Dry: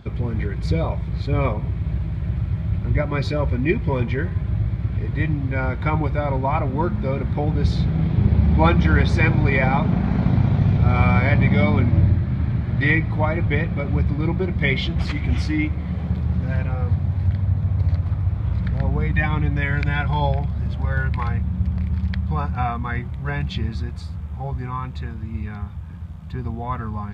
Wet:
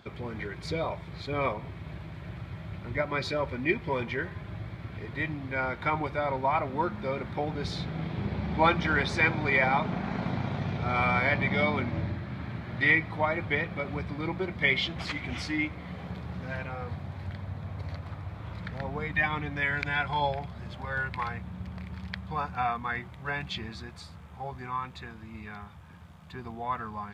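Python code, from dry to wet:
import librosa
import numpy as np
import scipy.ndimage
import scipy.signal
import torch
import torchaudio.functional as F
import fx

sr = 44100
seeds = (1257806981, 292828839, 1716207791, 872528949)

y = fx.highpass(x, sr, hz=610.0, slope=6)
y = F.gain(torch.from_numpy(y), -1.5).numpy()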